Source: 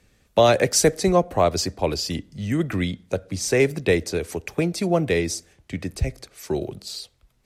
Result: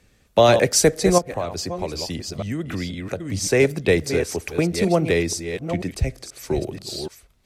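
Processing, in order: reverse delay 0.485 s, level -8.5 dB; 1.18–3.3 compressor 4:1, threshold -26 dBFS, peak gain reduction 12 dB; gain +1.5 dB

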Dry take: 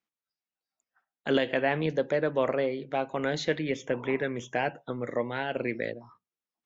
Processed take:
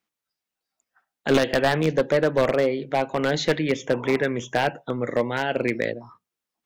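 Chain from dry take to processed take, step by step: one-sided fold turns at -21 dBFS; gain +7 dB

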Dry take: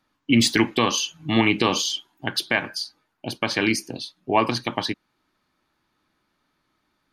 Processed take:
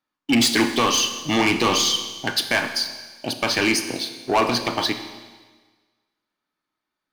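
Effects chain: low shelf 160 Hz -11.5 dB; sample leveller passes 3; Schroeder reverb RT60 1.4 s, combs from 26 ms, DRR 8 dB; gain -5.5 dB

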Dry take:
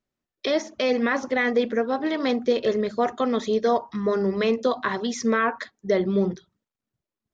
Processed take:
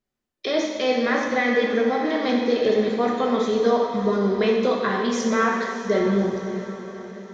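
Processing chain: diffused feedback echo 0.594 s, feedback 50%, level -12 dB; non-linear reverb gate 0.46 s falling, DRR -1 dB; gain -1.5 dB

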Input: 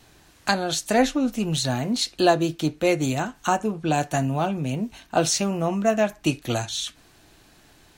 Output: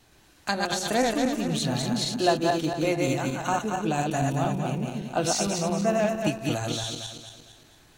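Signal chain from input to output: regenerating reverse delay 0.114 s, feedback 64%, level -2 dB; gain -5.5 dB

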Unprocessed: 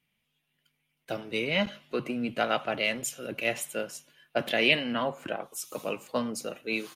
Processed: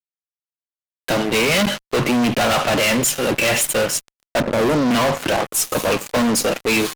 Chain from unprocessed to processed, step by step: 4.4–4.91 steep low-pass 590 Hz; fuzz box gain 43 dB, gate -48 dBFS; gain -2 dB

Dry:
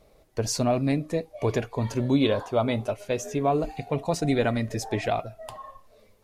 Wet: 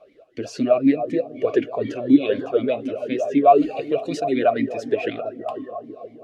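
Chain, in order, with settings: 3.44–4.2 high shelf 2100 Hz +9.5 dB; in parallel at +3 dB: limiter -21 dBFS, peak gain reduction 9.5 dB; on the sum: analogue delay 0.321 s, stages 2048, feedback 70%, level -12.5 dB; vowel sweep a-i 4 Hz; gain +9 dB

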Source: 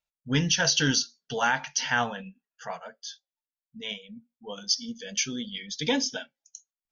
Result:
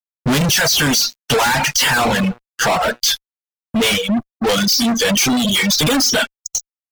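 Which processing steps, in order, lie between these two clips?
1.62–3.01 de-hum 120.3 Hz, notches 12; fuzz box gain 50 dB, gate -58 dBFS; reverb removal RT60 0.83 s

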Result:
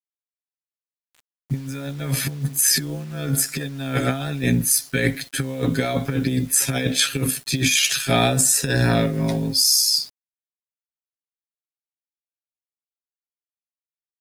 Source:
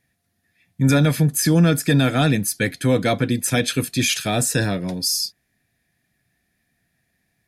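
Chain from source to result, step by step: granular stretch 1.9×, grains 31 ms; negative-ratio compressor -22 dBFS, ratio -0.5; bit-crush 8-bit; gain +2 dB

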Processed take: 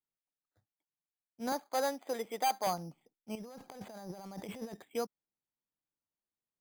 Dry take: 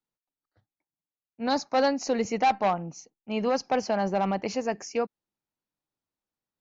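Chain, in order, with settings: 1.52–2.67 HPF 380 Hz 12 dB/oct; 3.35–4.74 negative-ratio compressor -37 dBFS, ratio -1; careless resampling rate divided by 8×, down filtered, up hold; gain -8 dB

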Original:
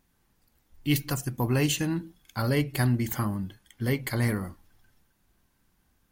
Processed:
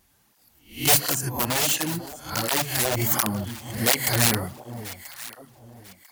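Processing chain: spectral swells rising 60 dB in 0.39 s; wrapped overs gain 18.5 dB; bell 710 Hz +5 dB 0.9 oct; 1.1–2.97 compressor 2:1, threshold -30 dBFS, peak gain reduction 6.5 dB; high shelf 2100 Hz +9 dB; echo with dull and thin repeats by turns 0.495 s, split 860 Hz, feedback 53%, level -11 dB; tape flanging out of phase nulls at 1.4 Hz, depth 7.2 ms; gain +4 dB

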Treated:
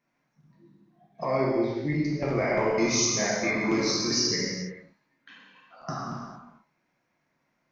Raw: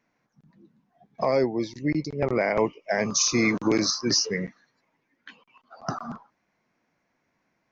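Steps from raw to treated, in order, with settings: 1.24–1.94 LPF 3500 Hz 12 dB/oct; 2.78–3.43 reverse; non-linear reverb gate 0.48 s falling, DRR -6 dB; gain -7.5 dB

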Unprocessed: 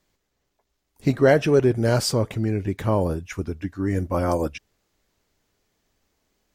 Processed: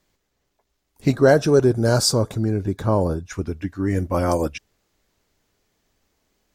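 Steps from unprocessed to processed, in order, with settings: dynamic EQ 7000 Hz, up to +5 dB, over -43 dBFS, Q 0.71; 1.14–3.33 spectral gain 1700–3400 Hz -10 dB; 2.79–3.46 high shelf 10000 Hz -10 dB; gain +2 dB

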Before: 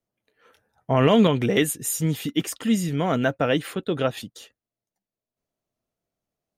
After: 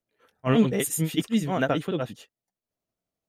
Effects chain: granular stretch 0.5×, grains 0.171 s; gain -1.5 dB

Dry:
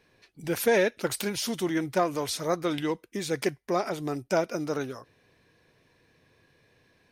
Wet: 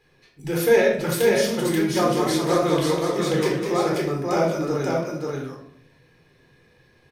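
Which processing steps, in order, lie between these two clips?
echo 0.534 s -3 dB; shoebox room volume 970 m³, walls furnished, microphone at 4 m; 1.75–3.95 warbling echo 0.198 s, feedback 47%, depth 130 cents, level -7 dB; gain -1.5 dB

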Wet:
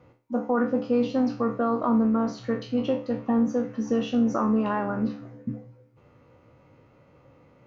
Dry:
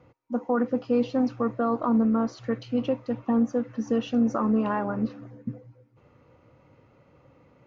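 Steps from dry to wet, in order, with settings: spectral trails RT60 0.37 s

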